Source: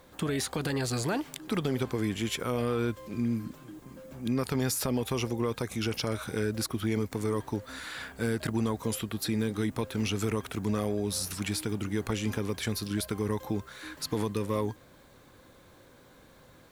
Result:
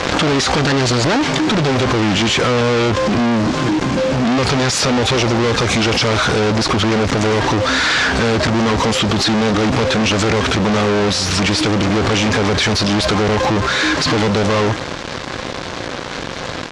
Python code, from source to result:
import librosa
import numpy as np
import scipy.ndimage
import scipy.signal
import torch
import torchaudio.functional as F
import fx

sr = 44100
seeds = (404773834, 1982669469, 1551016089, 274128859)

y = fx.fuzz(x, sr, gain_db=55.0, gate_db=-54.0)
y = scipy.signal.sosfilt(scipy.signal.butter(4, 6200.0, 'lowpass', fs=sr, output='sos'), y)
y = fx.low_shelf(y, sr, hz=92.0, db=-5.5)
y = fx.pre_swell(y, sr, db_per_s=29.0)